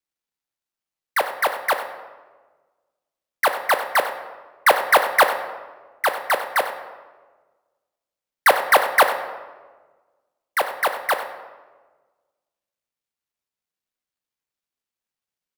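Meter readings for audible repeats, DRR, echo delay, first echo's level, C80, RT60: 1, 6.5 dB, 95 ms, -14.0 dB, 10.0 dB, 1.4 s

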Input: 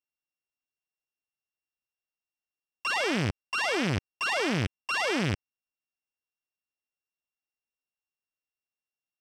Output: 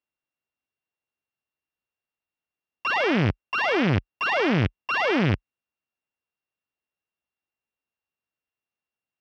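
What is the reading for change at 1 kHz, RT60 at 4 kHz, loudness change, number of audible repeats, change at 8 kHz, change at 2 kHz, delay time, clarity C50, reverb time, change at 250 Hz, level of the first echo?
+6.0 dB, none, +5.0 dB, none, under -10 dB, +4.5 dB, none, none, none, +6.5 dB, none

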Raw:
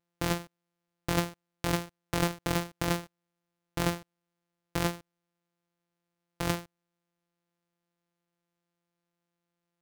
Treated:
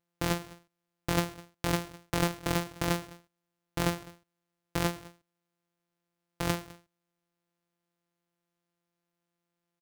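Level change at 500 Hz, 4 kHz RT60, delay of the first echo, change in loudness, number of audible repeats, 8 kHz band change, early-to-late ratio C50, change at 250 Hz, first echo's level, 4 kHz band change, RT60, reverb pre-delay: 0.0 dB, none, 0.206 s, 0.0 dB, 1, 0.0 dB, none, 0.0 dB, -21.0 dB, 0.0 dB, none, none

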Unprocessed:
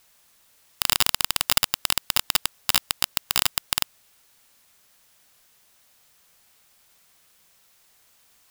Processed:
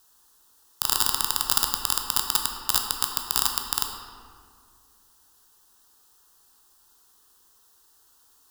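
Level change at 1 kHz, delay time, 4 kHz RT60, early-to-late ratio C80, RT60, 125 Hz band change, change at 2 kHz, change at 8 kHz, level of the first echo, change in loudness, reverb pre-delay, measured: +1.0 dB, none, 1.2 s, 5.5 dB, 2.1 s, -4.5 dB, -7.0 dB, 0.0 dB, none, -1.0 dB, 12 ms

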